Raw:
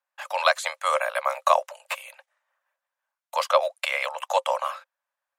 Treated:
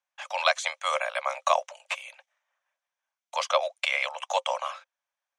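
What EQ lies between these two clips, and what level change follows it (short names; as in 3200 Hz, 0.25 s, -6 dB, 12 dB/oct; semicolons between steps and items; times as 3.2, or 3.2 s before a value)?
speaker cabinet 390–9300 Hz, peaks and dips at 720 Hz +4 dB, 2300 Hz +6 dB, 3300 Hz +7 dB, 6000 Hz +10 dB; -5.0 dB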